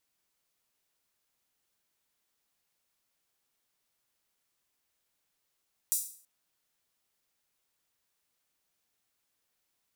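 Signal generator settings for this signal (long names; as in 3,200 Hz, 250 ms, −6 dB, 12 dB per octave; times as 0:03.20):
open synth hi-hat length 0.33 s, high-pass 7,800 Hz, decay 0.48 s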